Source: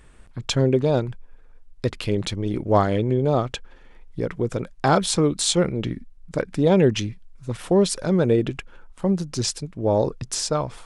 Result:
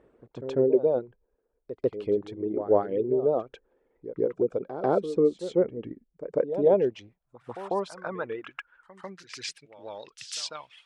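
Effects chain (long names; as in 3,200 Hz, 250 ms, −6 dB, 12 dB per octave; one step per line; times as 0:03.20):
reverb reduction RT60 1.7 s
in parallel at −2 dB: downward compressor, threshold −26 dBFS, peak gain reduction 13 dB
on the sum: echo ahead of the sound 145 ms −12 dB
pitch vibrato 6.1 Hz 47 cents
band-pass filter sweep 440 Hz → 3,000 Hz, 0:06.21–0:10.06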